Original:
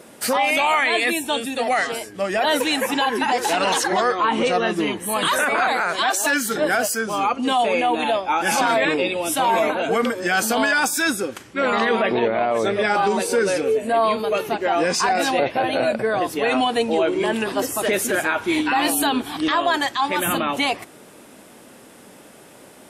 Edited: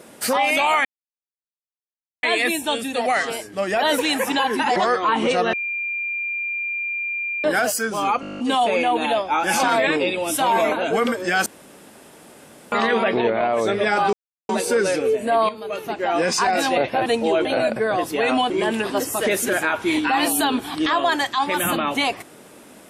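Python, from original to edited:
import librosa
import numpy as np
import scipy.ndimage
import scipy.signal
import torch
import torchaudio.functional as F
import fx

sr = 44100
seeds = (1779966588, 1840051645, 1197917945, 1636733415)

y = fx.edit(x, sr, fx.insert_silence(at_s=0.85, length_s=1.38),
    fx.cut(start_s=3.38, length_s=0.54),
    fx.bleep(start_s=4.69, length_s=1.91, hz=2390.0, db=-23.0),
    fx.stutter(start_s=7.37, slice_s=0.02, count=10),
    fx.room_tone_fill(start_s=10.44, length_s=1.26),
    fx.insert_silence(at_s=13.11, length_s=0.36),
    fx.fade_in_from(start_s=14.11, length_s=0.76, floor_db=-13.0),
    fx.move(start_s=16.73, length_s=0.39, to_s=15.68), tone=tone)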